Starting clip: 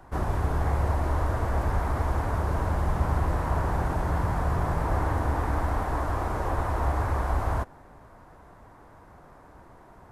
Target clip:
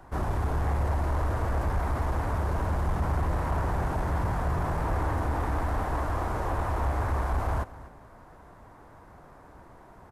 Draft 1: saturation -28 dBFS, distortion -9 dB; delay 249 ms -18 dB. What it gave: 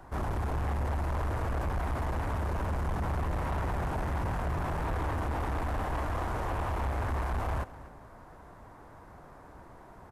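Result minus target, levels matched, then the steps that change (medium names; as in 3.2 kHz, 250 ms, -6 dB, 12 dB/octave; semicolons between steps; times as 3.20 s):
saturation: distortion +8 dB
change: saturation -20 dBFS, distortion -17 dB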